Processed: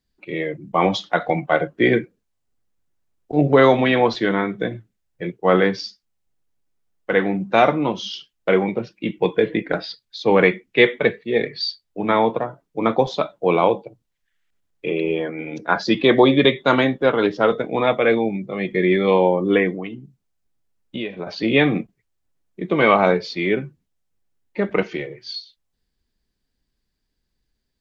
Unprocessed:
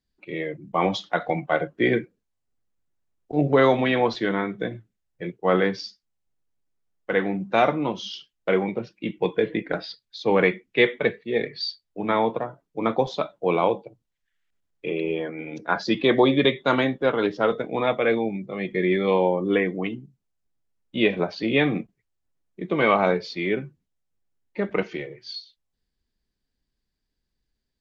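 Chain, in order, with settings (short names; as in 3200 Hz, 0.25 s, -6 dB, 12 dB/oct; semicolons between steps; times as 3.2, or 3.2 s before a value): 19.73–21.27 compressor 4:1, threshold -32 dBFS, peak gain reduction 14.5 dB; gain +4.5 dB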